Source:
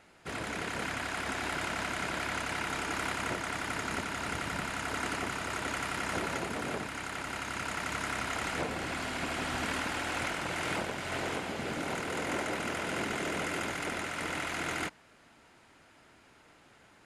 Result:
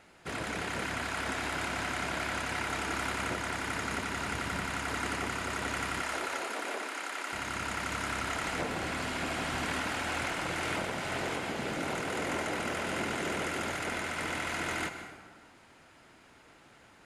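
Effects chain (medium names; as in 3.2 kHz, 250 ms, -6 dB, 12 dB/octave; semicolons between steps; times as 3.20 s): 6.02–7.33 s: Bessel high-pass 430 Hz, order 8; in parallel at -2.5 dB: peak limiter -28.5 dBFS, peak gain reduction 8.5 dB; on the sum: plate-style reverb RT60 1.5 s, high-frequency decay 0.6×, pre-delay 115 ms, DRR 8.5 dB; trim -3.5 dB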